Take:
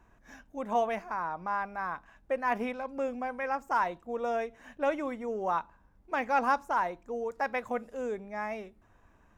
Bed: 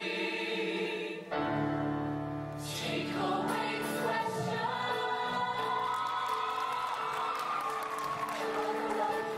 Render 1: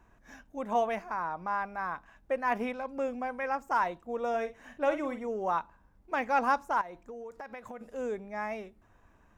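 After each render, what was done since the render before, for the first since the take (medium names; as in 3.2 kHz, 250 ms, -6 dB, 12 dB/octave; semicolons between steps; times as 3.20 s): 4.29–5.27 s: doubling 49 ms -10 dB; 6.81–7.81 s: compression 10:1, threshold -39 dBFS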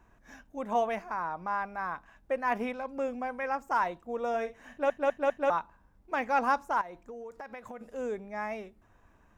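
4.70 s: stutter in place 0.20 s, 4 plays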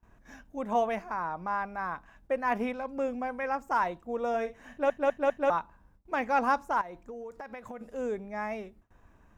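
gate with hold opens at -53 dBFS; bass shelf 350 Hz +4 dB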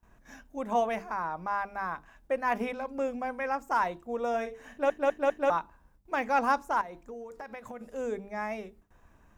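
treble shelf 4.7 kHz +5 dB; hum notches 50/100/150/200/250/300/350/400/450 Hz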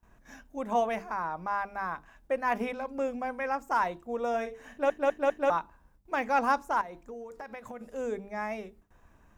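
no audible change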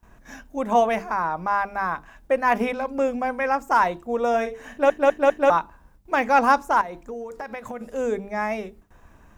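trim +8.5 dB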